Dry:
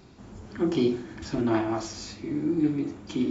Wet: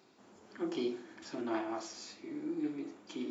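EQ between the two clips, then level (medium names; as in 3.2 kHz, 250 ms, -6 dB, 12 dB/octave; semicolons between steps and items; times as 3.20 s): high-pass 330 Hz 12 dB/octave; -8.0 dB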